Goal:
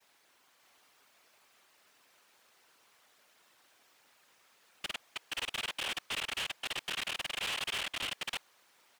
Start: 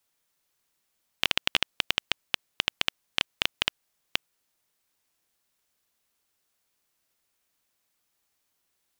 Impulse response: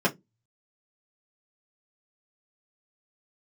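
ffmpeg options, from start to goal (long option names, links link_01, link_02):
-filter_complex "[0:a]areverse,asplit=2[link_01][link_02];[link_02]aecho=0:1:52|100|316|591:0.266|0.188|0.168|0.631[link_03];[link_01][link_03]amix=inputs=2:normalize=0,afftfilt=real='hypot(re,im)*cos(2*PI*random(0))':imag='hypot(re,im)*sin(2*PI*random(1))':win_size=512:overlap=0.75,asplit=2[link_04][link_05];[link_05]highpass=frequency=720:poles=1,volume=30dB,asoftclip=type=tanh:threshold=-15dB[link_06];[link_04][link_06]amix=inputs=2:normalize=0,lowpass=frequency=1800:poles=1,volume=-6dB,asoftclip=type=tanh:threshold=-33.5dB"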